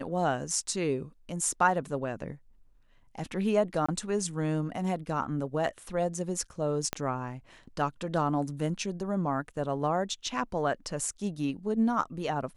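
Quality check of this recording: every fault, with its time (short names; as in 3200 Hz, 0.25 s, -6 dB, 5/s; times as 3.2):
3.86–3.88 gap 25 ms
6.93 pop -13 dBFS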